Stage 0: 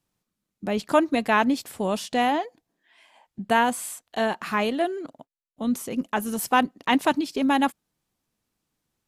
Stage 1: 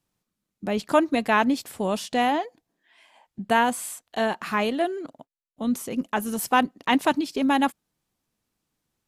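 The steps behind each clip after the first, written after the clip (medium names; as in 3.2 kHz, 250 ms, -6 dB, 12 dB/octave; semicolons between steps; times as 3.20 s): no audible change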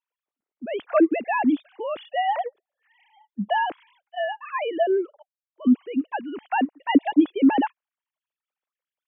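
formants replaced by sine waves; trim +1 dB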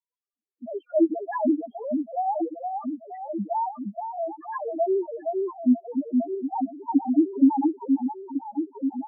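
echo whose repeats swap between lows and highs 467 ms, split 850 Hz, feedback 77%, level -3.5 dB; loudest bins only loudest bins 2; trim -1 dB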